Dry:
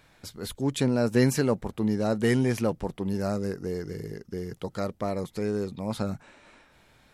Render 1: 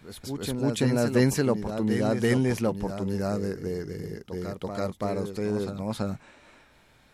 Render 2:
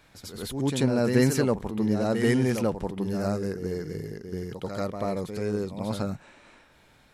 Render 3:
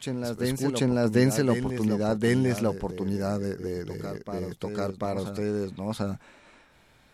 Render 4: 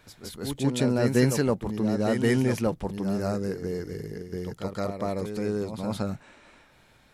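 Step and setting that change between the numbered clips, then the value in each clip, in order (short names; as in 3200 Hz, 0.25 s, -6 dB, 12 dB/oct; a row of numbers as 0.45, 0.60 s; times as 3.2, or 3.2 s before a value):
reverse echo, time: 333, 88, 741, 167 ms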